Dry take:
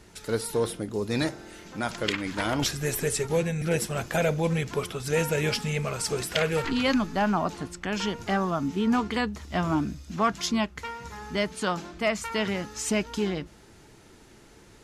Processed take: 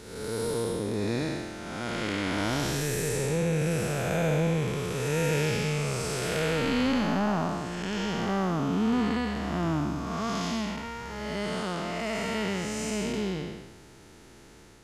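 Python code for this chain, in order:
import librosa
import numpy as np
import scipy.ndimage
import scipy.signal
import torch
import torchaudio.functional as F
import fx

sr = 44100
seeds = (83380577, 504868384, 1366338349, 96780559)

y = fx.spec_blur(x, sr, span_ms=361.0)
y = y * 10.0 ** (3.0 / 20.0)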